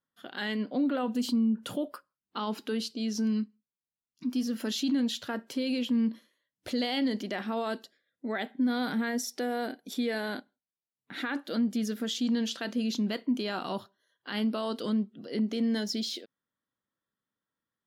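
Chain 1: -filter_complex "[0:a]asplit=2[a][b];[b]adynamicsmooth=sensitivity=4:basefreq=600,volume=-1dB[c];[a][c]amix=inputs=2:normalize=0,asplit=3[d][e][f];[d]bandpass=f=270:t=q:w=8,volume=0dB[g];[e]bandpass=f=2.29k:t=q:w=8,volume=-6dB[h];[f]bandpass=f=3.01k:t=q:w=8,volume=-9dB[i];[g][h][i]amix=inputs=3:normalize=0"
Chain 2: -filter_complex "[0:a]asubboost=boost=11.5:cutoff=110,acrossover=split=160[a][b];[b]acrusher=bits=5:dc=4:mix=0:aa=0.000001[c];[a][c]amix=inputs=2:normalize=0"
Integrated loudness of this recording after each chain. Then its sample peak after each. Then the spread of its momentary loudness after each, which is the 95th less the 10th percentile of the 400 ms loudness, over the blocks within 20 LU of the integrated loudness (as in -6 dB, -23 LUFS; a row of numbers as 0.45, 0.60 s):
-32.5, -30.5 LUFS; -16.0, -15.5 dBFS; 17, 14 LU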